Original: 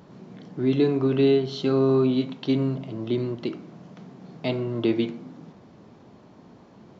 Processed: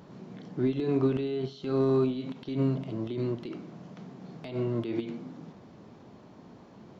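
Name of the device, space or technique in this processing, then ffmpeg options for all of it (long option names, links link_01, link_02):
de-esser from a sidechain: -filter_complex "[0:a]asplit=2[link_01][link_02];[link_02]highpass=4100,apad=whole_len=308631[link_03];[link_01][link_03]sidechaincompress=threshold=-52dB:ratio=4:attack=1.2:release=53,volume=-1dB"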